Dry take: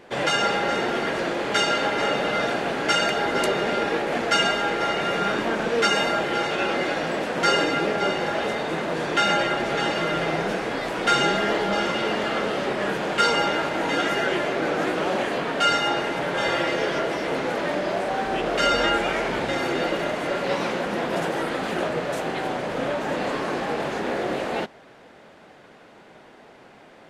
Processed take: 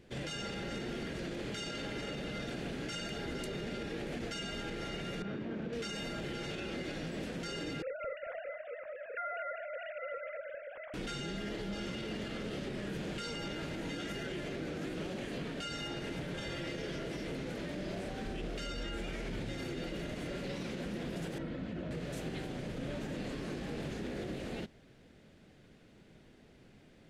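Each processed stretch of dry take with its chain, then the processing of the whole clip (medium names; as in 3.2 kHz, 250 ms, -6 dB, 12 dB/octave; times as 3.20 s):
5.22–5.73 s: high-pass 100 Hz + tape spacing loss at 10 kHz 29 dB
7.82–10.94 s: formants replaced by sine waves + low-pass 2.2 kHz 24 dB/octave + feedback delay 223 ms, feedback 28%, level -8.5 dB
21.38–21.91 s: tape spacing loss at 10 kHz 24 dB + comb of notches 400 Hz
whole clip: amplifier tone stack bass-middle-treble 10-0-1; peak limiter -42.5 dBFS; trim +11.5 dB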